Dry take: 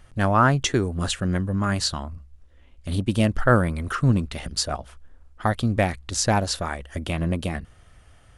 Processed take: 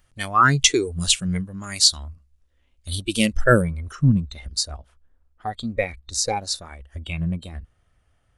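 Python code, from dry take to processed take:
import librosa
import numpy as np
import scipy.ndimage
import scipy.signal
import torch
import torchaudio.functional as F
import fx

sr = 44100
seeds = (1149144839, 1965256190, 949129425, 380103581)

y = fx.high_shelf(x, sr, hz=2400.0, db=fx.steps((0.0, 8.0), (3.61, -2.5)))
y = fx.noise_reduce_blind(y, sr, reduce_db=16)
y = F.gain(torch.from_numpy(y), 3.5).numpy()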